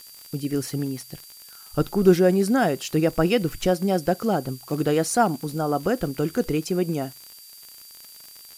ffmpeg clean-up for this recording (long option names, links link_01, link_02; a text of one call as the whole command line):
ffmpeg -i in.wav -af "adeclick=threshold=4,bandreject=frequency=4700:width=30,afftdn=noise_reduction=22:noise_floor=-46" out.wav